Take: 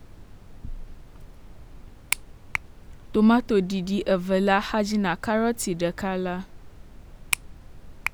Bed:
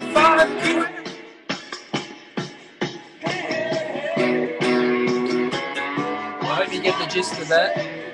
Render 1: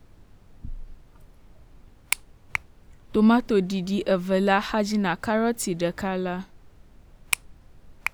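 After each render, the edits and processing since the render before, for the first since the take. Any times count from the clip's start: noise print and reduce 6 dB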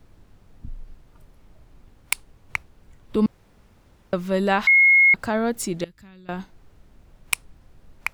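3.26–4.13 room tone; 4.67–5.14 bleep 2160 Hz -11 dBFS; 5.84–6.29 passive tone stack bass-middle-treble 6-0-2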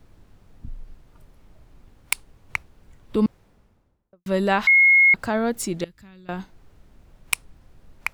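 3.18–4.26 studio fade out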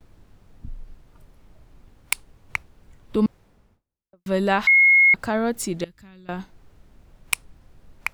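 gate with hold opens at -50 dBFS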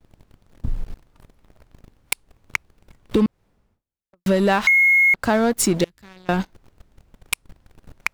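compressor 10:1, threshold -25 dBFS, peak gain reduction 12 dB; sample leveller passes 3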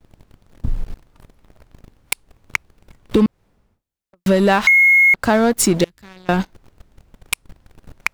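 gain +3.5 dB; limiter -3 dBFS, peak gain reduction 1.5 dB

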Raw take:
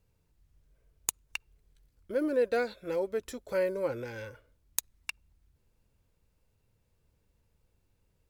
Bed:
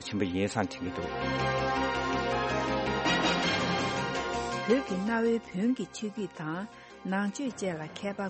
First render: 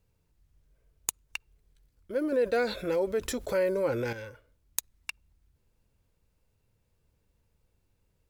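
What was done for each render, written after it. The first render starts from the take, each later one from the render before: 2.32–4.13 fast leveller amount 50%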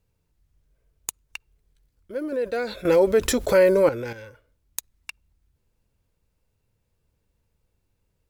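2.85–3.89 gain +10.5 dB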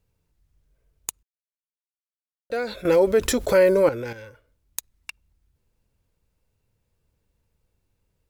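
1.23–2.5 mute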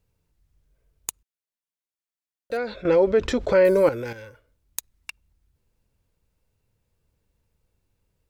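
2.57–3.65 air absorption 160 m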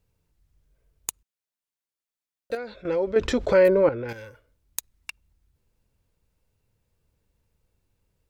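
2.55–3.16 gain -7 dB; 3.68–4.09 air absorption 370 m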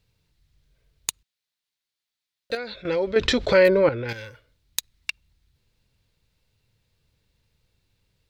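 graphic EQ 125/2000/4000 Hz +5/+5/+12 dB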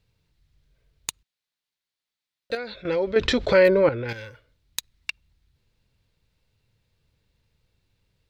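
high shelf 4400 Hz -5 dB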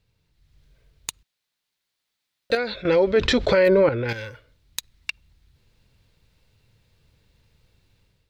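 AGC gain up to 8 dB; limiter -9.5 dBFS, peak gain reduction 7.5 dB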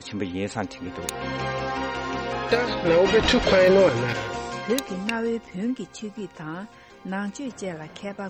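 add bed +1 dB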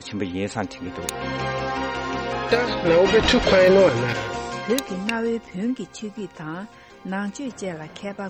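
gain +2 dB

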